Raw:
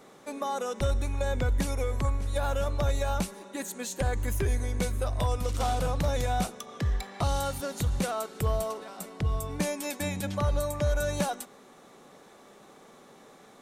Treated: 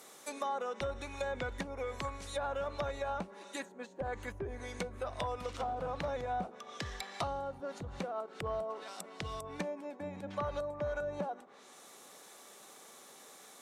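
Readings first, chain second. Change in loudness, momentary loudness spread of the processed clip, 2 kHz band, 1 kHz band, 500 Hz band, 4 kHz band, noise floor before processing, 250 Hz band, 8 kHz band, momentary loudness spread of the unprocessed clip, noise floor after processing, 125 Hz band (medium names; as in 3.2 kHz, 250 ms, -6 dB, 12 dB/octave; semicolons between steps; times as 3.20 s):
-9.0 dB, 16 LU, -5.5 dB, -5.0 dB, -5.5 dB, -7.5 dB, -54 dBFS, -10.5 dB, -13.0 dB, 6 LU, -56 dBFS, -16.5 dB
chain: RIAA curve recording; low-pass that closes with the level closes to 740 Hz, closed at -25 dBFS; trim -3 dB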